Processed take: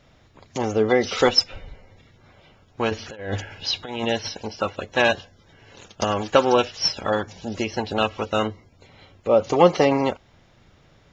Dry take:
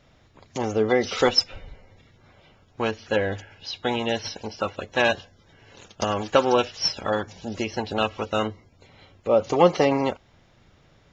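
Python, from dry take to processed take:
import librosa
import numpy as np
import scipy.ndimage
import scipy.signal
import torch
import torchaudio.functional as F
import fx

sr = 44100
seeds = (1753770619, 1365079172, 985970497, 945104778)

y = fx.over_compress(x, sr, threshold_db=-30.0, ratio=-0.5, at=(2.89, 4.04), fade=0.02)
y = y * 10.0 ** (2.0 / 20.0)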